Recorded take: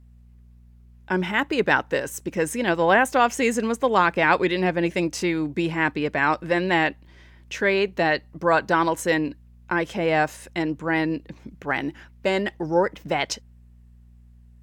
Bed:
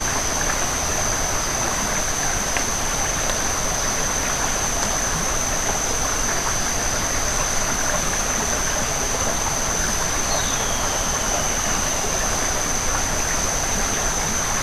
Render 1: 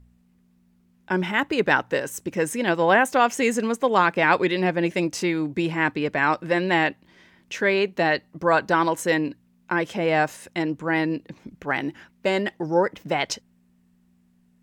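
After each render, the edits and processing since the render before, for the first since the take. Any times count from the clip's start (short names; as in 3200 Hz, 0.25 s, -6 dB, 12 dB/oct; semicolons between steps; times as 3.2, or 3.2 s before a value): de-hum 60 Hz, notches 2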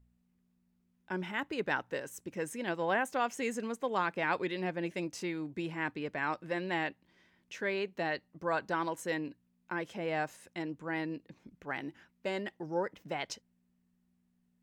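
gain -13 dB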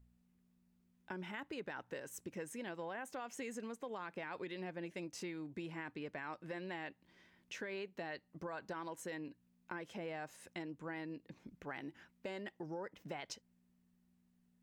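limiter -26 dBFS, peak gain reduction 8.5 dB; compressor 3:1, threshold -44 dBFS, peak gain reduction 10 dB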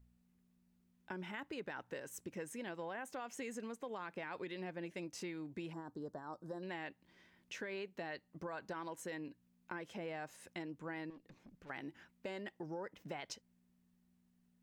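5.73–6.63 Butterworth band-stop 2400 Hz, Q 0.65; 11.1–11.7 tube stage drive 53 dB, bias 0.45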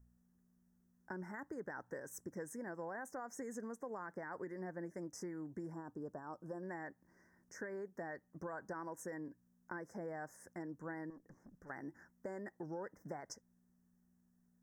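elliptic band-stop 1800–5500 Hz, stop band 40 dB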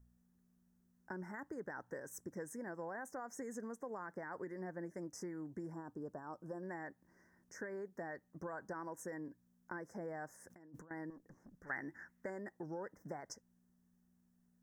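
10.5–10.91 negative-ratio compressor -58 dBFS; 11.63–12.3 bell 1900 Hz +11 dB 0.96 oct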